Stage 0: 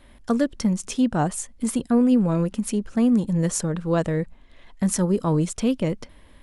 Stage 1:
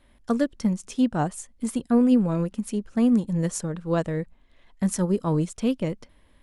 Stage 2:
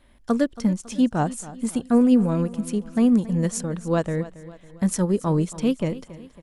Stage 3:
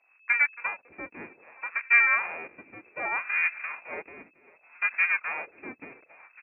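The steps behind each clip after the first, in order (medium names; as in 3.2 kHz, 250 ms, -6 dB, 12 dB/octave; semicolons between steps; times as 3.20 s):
upward expansion 1.5:1, over -31 dBFS
feedback delay 276 ms, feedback 49%, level -17 dB; trim +2 dB
square wave that keeps the level; frequency inversion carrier 2.6 kHz; wah-wah 0.65 Hz 280–1800 Hz, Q 2.3; trim -3 dB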